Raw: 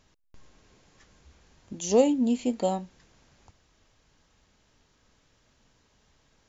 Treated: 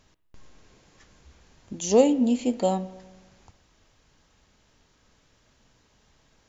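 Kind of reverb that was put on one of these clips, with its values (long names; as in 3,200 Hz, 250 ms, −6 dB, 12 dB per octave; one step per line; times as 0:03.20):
spring reverb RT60 1.2 s, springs 32/58 ms, DRR 16 dB
level +2.5 dB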